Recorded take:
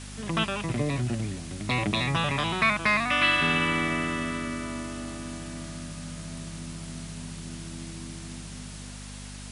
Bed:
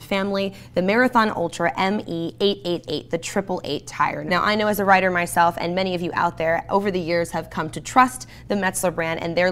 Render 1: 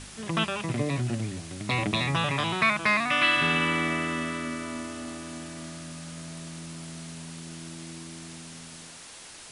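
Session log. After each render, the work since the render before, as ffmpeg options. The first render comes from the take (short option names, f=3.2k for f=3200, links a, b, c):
-af "bandreject=f=50:t=h:w=4,bandreject=f=100:t=h:w=4,bandreject=f=150:t=h:w=4,bandreject=f=200:t=h:w=4,bandreject=f=250:t=h:w=4"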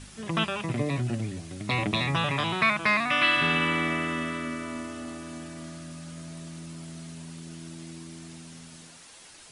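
-af "afftdn=nr=6:nf=-46"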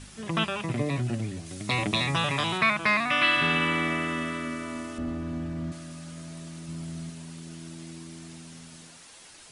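-filter_complex "[0:a]asettb=1/sr,asplit=3[a][b][c];[a]atrim=end=1.464[d];[b]atrim=start=1.46:end=2.58,asetpts=PTS-STARTPTS,afade=t=in:d=0.004:c=qsin,afade=t=out:st=1.116:d=0.004:c=qsin,bass=f=250:g=-1,treble=f=4k:g=6[e];[c]atrim=start=2.576[f];[d][e]acrossfade=d=0.004:c1=hsin:c2=qsin[g];[g][f]acrossfade=d=0.004:c1=qsin:c2=hsin,asettb=1/sr,asplit=3[h][i][j];[h]atrim=end=4.984[k];[i]atrim=start=4.98:end=5.72,asetpts=PTS-STARTPTS,afade=t=in:d=0.004:c=qsin,afade=t=out:st=0.736:d=0.004:c=qsin,aemphasis=mode=reproduction:type=riaa[l];[j]atrim=start=5.716[m];[k][l]acrossfade=d=0.004:c1=hsin:c2=qsin[n];[n][m]acrossfade=d=0.004:c1=qsin:c2=hsin,asettb=1/sr,asplit=3[o][p][q];[o]atrim=end=6.684[r];[p]atrim=start=6.68:end=7.1,asetpts=PTS-STARTPTS,afade=t=in:d=0.004:c=qsin,afade=t=out:st=0.416:d=0.004:c=qsin,lowshelf=f=180:g=9.5[s];[q]atrim=start=7.096[t];[r][s]acrossfade=d=0.004:c1=hsin:c2=qsin[u];[u][t]acrossfade=d=0.004:c1=qsin:c2=hsin"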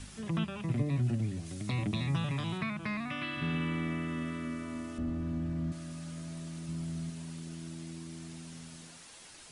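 -filter_complex "[0:a]acrossover=split=270[a][b];[b]acompressor=threshold=-51dB:ratio=2[c];[a][c]amix=inputs=2:normalize=0"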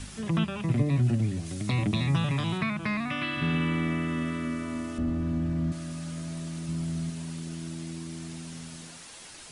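-af "volume=6dB"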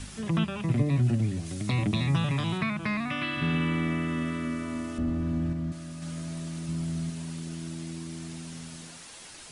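-filter_complex "[0:a]asplit=3[a][b][c];[a]atrim=end=5.532[d];[b]atrim=start=5.528:end=6.022,asetpts=PTS-STARTPTS,volume=-3.5dB[e];[c]atrim=start=6.018[f];[d][e]acrossfade=d=0.004:c1=hsin:c2=hsin[g];[g][f]acrossfade=d=0.004:c1=hsin:c2=hsin"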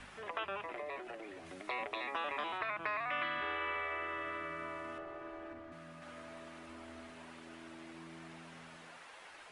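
-filter_complex "[0:a]afftfilt=real='re*lt(hypot(re,im),0.141)':imag='im*lt(hypot(re,im),0.141)':win_size=1024:overlap=0.75,acrossover=split=450 2600:gain=0.126 1 0.0891[a][b][c];[a][b][c]amix=inputs=3:normalize=0"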